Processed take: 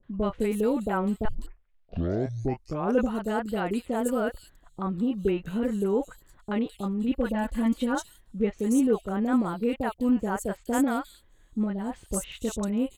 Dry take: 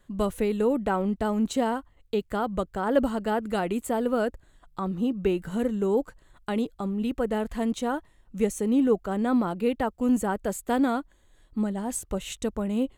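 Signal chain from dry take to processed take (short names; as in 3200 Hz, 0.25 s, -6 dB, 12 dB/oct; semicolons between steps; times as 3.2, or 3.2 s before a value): 1.25 tape start 1.89 s; 7.08–7.95 comb 3.5 ms, depth 78%; three bands offset in time lows, mids, highs 30/210 ms, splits 650/3700 Hz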